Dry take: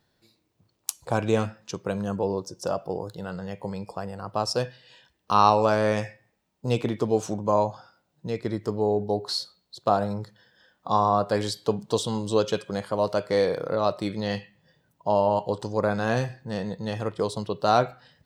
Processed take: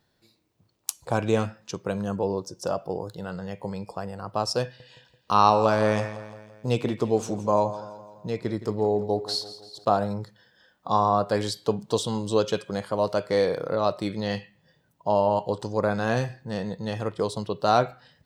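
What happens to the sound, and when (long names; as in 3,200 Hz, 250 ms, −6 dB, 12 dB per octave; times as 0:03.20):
0:04.63–0:09.85: repeating echo 168 ms, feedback 52%, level −15 dB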